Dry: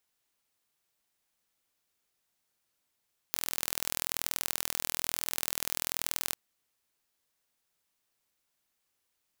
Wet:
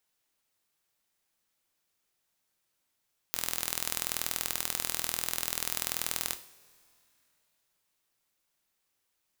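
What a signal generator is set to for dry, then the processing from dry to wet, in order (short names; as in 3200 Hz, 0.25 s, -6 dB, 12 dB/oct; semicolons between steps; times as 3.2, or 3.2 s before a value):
pulse train 41.1/s, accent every 2, -2.5 dBFS 3.00 s
two-slope reverb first 0.49 s, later 3 s, from -20 dB, DRR 8 dB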